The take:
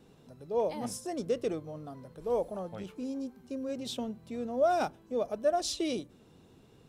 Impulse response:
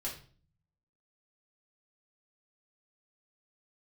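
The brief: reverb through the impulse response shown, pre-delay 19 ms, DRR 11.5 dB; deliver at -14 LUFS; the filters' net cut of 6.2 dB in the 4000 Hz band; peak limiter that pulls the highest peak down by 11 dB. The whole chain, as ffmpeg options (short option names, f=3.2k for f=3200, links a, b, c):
-filter_complex "[0:a]equalizer=f=4k:t=o:g=-8,alimiter=level_in=5dB:limit=-24dB:level=0:latency=1,volume=-5dB,asplit=2[a][b];[1:a]atrim=start_sample=2205,adelay=19[c];[b][c]afir=irnorm=-1:irlink=0,volume=-12.5dB[d];[a][d]amix=inputs=2:normalize=0,volume=24dB"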